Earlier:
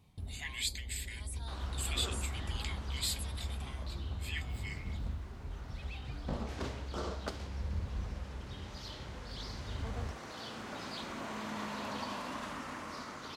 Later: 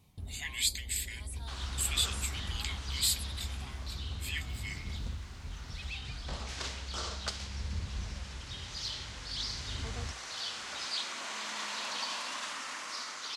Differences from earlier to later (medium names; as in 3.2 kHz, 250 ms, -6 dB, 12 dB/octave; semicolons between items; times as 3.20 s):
speech: add tilt EQ +2.5 dB/octave; second sound: add frequency weighting ITU-R 468